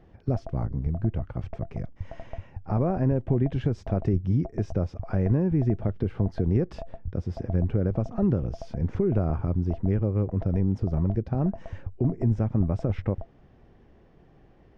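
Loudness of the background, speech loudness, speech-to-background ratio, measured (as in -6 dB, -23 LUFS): -42.5 LUFS, -27.5 LUFS, 15.0 dB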